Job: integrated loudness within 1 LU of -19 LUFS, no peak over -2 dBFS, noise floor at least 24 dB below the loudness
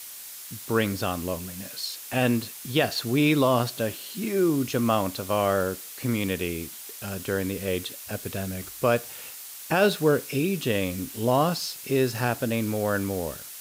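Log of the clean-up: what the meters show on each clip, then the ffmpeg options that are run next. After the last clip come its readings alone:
noise floor -41 dBFS; noise floor target -51 dBFS; loudness -26.5 LUFS; peak -9.5 dBFS; loudness target -19.0 LUFS
-> -af "afftdn=nr=10:nf=-41"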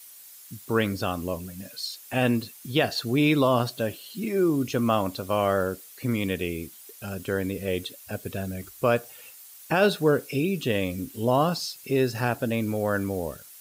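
noise floor -48 dBFS; noise floor target -51 dBFS
-> -af "afftdn=nr=6:nf=-48"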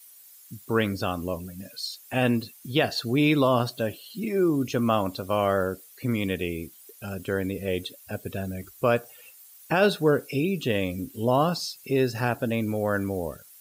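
noise floor -51 dBFS; loudness -26.5 LUFS; peak -10.0 dBFS; loudness target -19.0 LUFS
-> -af "volume=7.5dB"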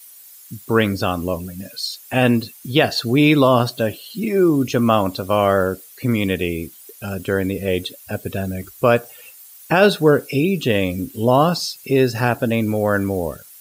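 loudness -19.0 LUFS; peak -2.5 dBFS; noise floor -44 dBFS

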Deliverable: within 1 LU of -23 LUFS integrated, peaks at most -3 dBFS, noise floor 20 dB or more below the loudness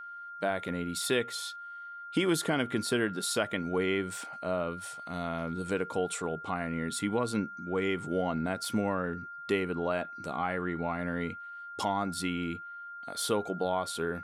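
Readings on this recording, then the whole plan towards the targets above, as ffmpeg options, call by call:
steady tone 1400 Hz; tone level -41 dBFS; loudness -32.5 LUFS; peak -16.0 dBFS; loudness target -23.0 LUFS
-> -af "bandreject=f=1.4k:w=30"
-af "volume=9.5dB"

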